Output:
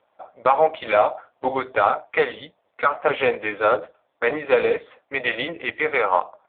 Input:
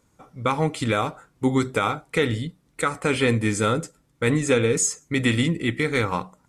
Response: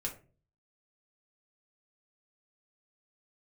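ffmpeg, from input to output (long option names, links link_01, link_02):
-af "highpass=frequency=650:width_type=q:width=4.5,acontrast=60,volume=-2dB" -ar 8000 -c:a libopencore_amrnb -b:a 5150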